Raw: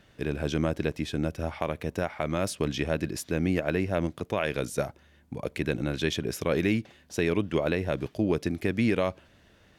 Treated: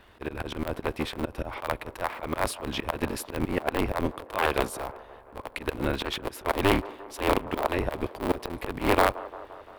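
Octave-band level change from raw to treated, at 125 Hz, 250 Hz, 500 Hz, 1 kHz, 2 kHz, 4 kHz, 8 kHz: -4.5, -3.0, -0.5, +8.5, +2.0, +2.5, 0.0 dB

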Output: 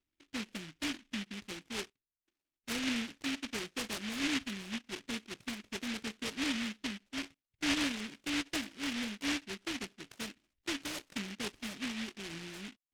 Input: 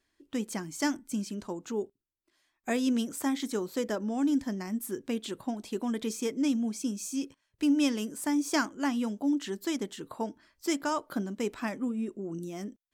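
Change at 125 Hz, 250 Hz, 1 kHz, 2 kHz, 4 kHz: n/a, -9.5 dB, -9.0 dB, +1.5 dB, +3.5 dB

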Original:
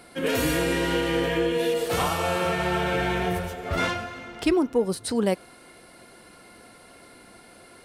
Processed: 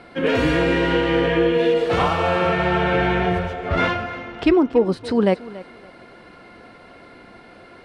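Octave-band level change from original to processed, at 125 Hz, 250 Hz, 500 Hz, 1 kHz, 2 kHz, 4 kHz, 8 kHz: +6.0 dB, +6.0 dB, +6.5 dB, +6.0 dB, +5.5 dB, +2.0 dB, under -10 dB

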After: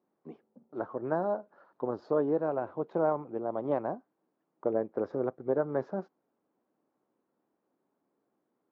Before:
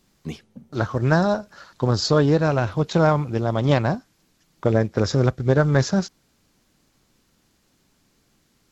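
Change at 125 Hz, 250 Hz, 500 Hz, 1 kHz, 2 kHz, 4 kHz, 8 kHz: -24.5 dB, -13.0 dB, -8.0 dB, -10.0 dB, -19.5 dB, under -35 dB, n/a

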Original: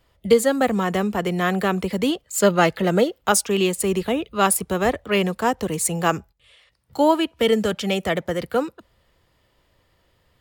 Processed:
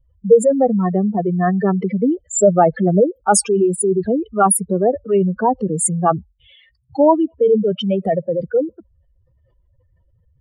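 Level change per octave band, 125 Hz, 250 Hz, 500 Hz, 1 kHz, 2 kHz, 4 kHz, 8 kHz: +5.5, +4.5, +5.5, +4.0, -7.5, -7.5, +4.5 dB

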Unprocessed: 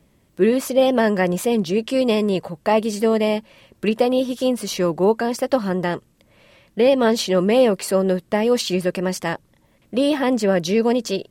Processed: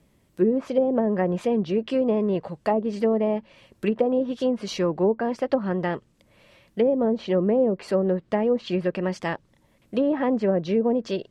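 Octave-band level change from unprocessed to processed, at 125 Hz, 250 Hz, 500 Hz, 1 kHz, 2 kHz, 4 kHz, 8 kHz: -3.5 dB, -3.5 dB, -4.5 dB, -6.0 dB, -9.0 dB, -12.0 dB, under -15 dB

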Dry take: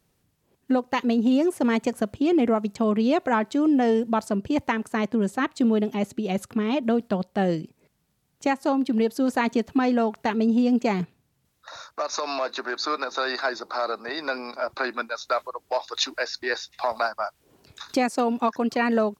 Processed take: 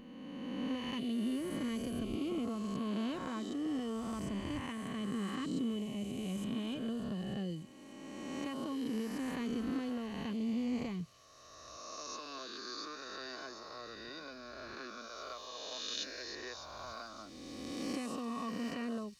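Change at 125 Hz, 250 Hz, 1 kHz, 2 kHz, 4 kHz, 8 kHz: -9.5, -13.0, -19.0, -17.5, -10.0, -9.5 dB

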